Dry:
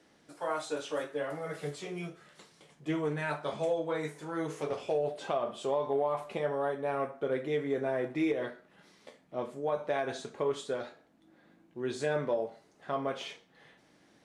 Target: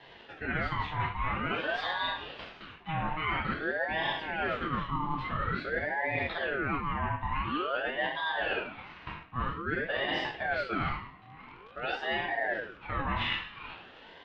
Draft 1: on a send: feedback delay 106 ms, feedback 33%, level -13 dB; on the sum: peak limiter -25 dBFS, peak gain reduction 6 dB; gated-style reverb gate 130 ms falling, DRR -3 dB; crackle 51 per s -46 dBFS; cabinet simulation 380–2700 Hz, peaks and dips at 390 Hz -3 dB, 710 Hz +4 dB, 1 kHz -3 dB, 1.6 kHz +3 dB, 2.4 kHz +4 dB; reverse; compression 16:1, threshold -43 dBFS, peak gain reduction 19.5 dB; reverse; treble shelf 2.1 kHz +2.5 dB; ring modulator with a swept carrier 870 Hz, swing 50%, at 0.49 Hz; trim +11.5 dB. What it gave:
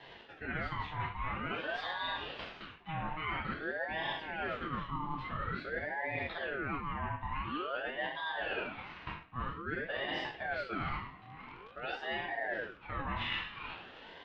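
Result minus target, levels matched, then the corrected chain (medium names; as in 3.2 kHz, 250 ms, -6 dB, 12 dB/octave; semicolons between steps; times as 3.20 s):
compression: peak gain reduction +5.5 dB
on a send: feedback delay 106 ms, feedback 33%, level -13 dB; on the sum: peak limiter -25 dBFS, peak gain reduction 6 dB; gated-style reverb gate 130 ms falling, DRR -3 dB; crackle 51 per s -46 dBFS; cabinet simulation 380–2700 Hz, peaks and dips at 390 Hz -3 dB, 710 Hz +4 dB, 1 kHz -3 dB, 1.6 kHz +3 dB, 2.4 kHz +4 dB; reverse; compression 16:1, threshold -37 dBFS, peak gain reduction 14 dB; reverse; treble shelf 2.1 kHz +2.5 dB; ring modulator with a swept carrier 870 Hz, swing 50%, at 0.49 Hz; trim +11.5 dB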